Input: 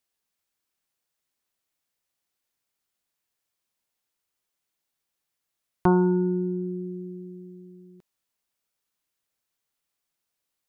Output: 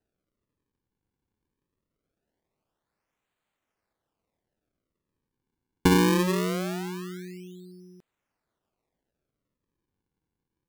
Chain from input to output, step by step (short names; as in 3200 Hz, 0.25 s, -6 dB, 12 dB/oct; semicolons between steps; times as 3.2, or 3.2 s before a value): treble ducked by the level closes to 1700 Hz, closed at -25.5 dBFS; decimation with a swept rate 39×, swing 160% 0.22 Hz